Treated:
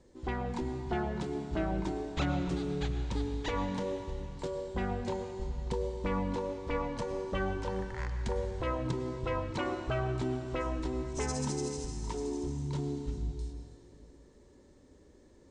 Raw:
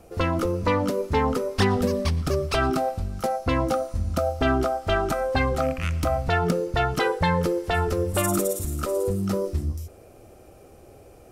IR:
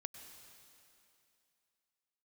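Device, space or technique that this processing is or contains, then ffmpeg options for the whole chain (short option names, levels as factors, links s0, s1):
slowed and reverbed: -filter_complex "[0:a]lowpass=f=11000:w=0.5412,lowpass=f=11000:w=1.3066,asetrate=32193,aresample=44100[s0];[1:a]atrim=start_sample=2205[s1];[s0][s1]afir=irnorm=-1:irlink=0,volume=0.473"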